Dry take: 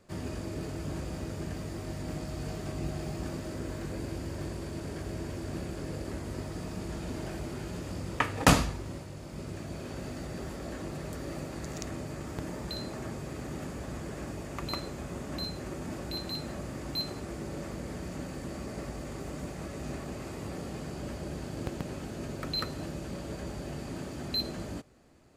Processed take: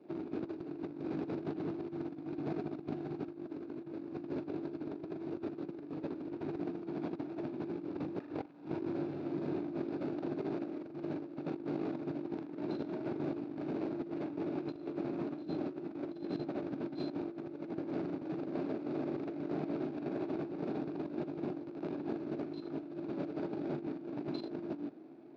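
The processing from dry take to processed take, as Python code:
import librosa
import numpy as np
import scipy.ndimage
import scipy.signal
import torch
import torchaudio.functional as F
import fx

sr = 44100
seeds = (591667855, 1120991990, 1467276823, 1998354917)

p1 = scipy.ndimage.median_filter(x, 41, mode='constant')
p2 = p1 + fx.room_early_taps(p1, sr, ms=(14, 41, 79), db=(-12.5, -5.0, -5.5), dry=0)
p3 = 10.0 ** (-26.0 / 20.0) * np.tanh(p2 / 10.0 ** (-26.0 / 20.0))
p4 = fx.cabinet(p3, sr, low_hz=200.0, low_slope=24, high_hz=3900.0, hz=(210.0, 320.0, 520.0, 1100.0, 1900.0, 3100.0), db=(-10, 9, -9, -4, -9, -9))
p5 = fx.over_compress(p4, sr, threshold_db=-43.0, ratio=-0.5)
y = F.gain(torch.from_numpy(p5), 4.5).numpy()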